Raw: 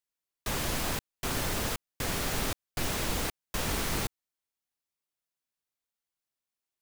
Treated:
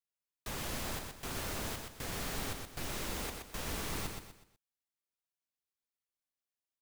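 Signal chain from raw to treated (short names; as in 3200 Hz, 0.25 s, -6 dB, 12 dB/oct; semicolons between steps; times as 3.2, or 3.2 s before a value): feedback echo 0.123 s, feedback 36%, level -5 dB; gain -8.5 dB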